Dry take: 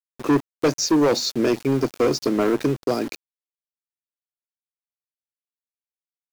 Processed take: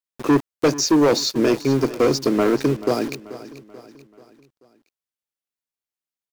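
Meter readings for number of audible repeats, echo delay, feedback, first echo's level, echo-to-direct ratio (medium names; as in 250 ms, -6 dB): 3, 435 ms, 47%, -16.0 dB, -15.0 dB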